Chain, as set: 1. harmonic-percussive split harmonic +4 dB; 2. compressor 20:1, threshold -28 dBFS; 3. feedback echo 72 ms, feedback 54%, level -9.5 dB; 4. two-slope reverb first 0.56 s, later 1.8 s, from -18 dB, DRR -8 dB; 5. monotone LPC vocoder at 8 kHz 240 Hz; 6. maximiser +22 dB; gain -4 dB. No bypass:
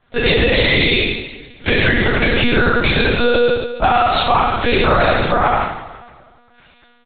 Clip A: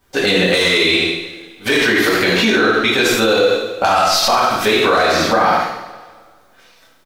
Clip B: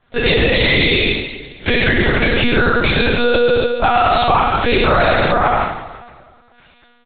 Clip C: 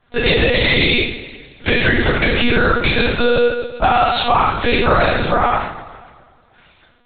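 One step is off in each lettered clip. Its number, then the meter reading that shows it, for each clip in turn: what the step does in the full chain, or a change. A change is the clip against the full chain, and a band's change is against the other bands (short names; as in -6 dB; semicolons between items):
5, 125 Hz band -8.5 dB; 2, mean gain reduction 2.0 dB; 3, momentary loudness spread change +2 LU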